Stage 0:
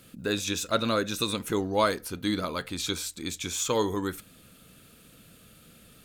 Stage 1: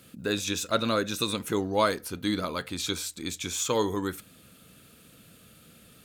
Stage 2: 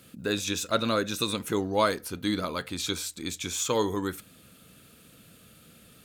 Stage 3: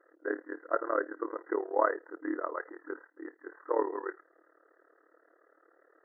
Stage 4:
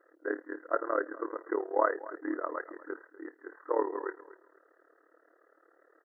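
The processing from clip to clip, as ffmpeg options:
-af "highpass=55"
-af anull
-af "afftfilt=real='re*between(b*sr/4096,310,2000)':imag='im*between(b*sr/4096,310,2000)':win_size=4096:overlap=0.75,tremolo=f=37:d=0.857,volume=1dB"
-af "aecho=1:1:244|488:0.133|0.0347"

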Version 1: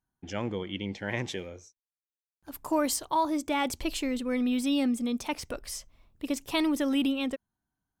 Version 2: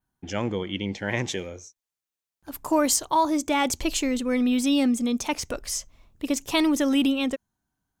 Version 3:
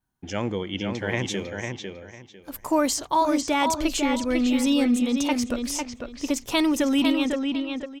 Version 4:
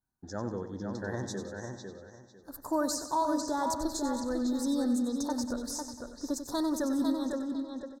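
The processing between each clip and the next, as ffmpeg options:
-af "adynamicequalizer=threshold=0.00158:dfrequency=6600:dqfactor=2.9:tfrequency=6600:tqfactor=2.9:attack=5:release=100:ratio=0.375:range=4:mode=boostabove:tftype=bell,volume=5dB"
-filter_complex "[0:a]acrossover=split=6000[a][b];[a]aecho=1:1:500|1000|1500:0.562|0.129|0.0297[c];[b]alimiter=limit=-23dB:level=0:latency=1:release=153[d];[c][d]amix=inputs=2:normalize=0"
-af "asuperstop=centerf=2600:order=12:qfactor=1.3,aecho=1:1:94|188|282|376|470|564:0.316|0.164|0.0855|0.0445|0.0231|0.012,volume=-8dB"

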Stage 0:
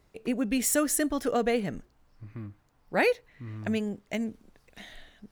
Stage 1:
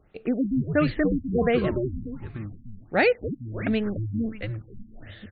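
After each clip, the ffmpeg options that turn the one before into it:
-filter_complex "[0:a]bandreject=f=1k:w=5,asplit=6[a][b][c][d][e][f];[b]adelay=292,afreqshift=-110,volume=-5dB[g];[c]adelay=584,afreqshift=-220,volume=-13.2dB[h];[d]adelay=876,afreqshift=-330,volume=-21.4dB[i];[e]adelay=1168,afreqshift=-440,volume=-29.5dB[j];[f]adelay=1460,afreqshift=-550,volume=-37.7dB[k];[a][g][h][i][j][k]amix=inputs=6:normalize=0,afftfilt=real='re*lt(b*sr/1024,270*pow(4700/270,0.5+0.5*sin(2*PI*1.4*pts/sr)))':imag='im*lt(b*sr/1024,270*pow(4700/270,0.5+0.5*sin(2*PI*1.4*pts/sr)))':win_size=1024:overlap=0.75,volume=4dB"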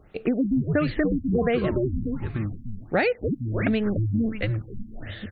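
-af "acompressor=threshold=-27dB:ratio=5,volume=7dB"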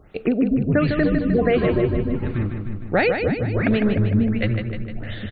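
-af "aecho=1:1:153|306|459|612|765|918|1071|1224:0.473|0.274|0.159|0.0923|0.0535|0.0311|0.018|0.0104,volume=3.5dB"

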